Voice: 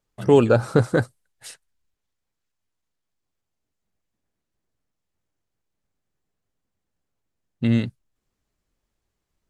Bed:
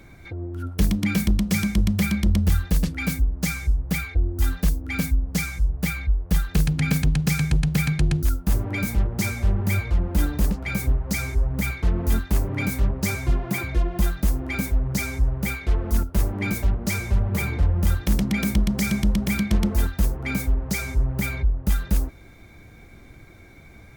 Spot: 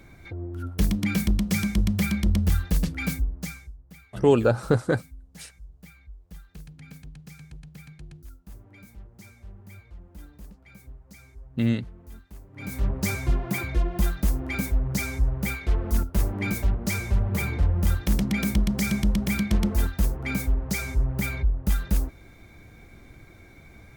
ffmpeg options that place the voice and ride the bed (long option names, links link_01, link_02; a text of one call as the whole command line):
ffmpeg -i stem1.wav -i stem2.wav -filter_complex "[0:a]adelay=3950,volume=-3.5dB[link_01];[1:a]volume=19dB,afade=type=out:start_time=3.06:duration=0.66:silence=0.0891251,afade=type=in:start_time=12.53:duration=0.4:silence=0.0841395[link_02];[link_01][link_02]amix=inputs=2:normalize=0" out.wav